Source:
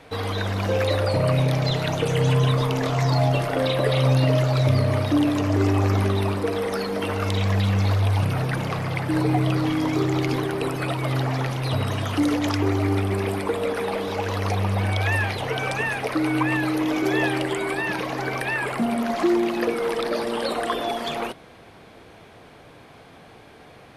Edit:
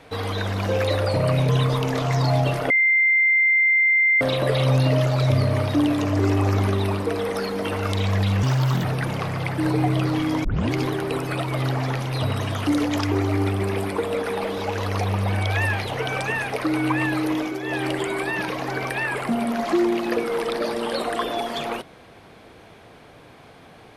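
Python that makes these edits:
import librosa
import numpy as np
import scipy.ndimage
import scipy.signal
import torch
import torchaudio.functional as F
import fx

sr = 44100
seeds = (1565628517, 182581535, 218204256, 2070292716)

y = fx.edit(x, sr, fx.cut(start_s=1.49, length_s=0.88),
    fx.insert_tone(at_s=3.58, length_s=1.51, hz=2090.0, db=-14.5),
    fx.speed_span(start_s=7.8, length_s=0.55, speed=1.33),
    fx.tape_start(start_s=9.95, length_s=0.28),
    fx.fade_down_up(start_s=16.84, length_s=0.55, db=-8.5, fade_s=0.25), tone=tone)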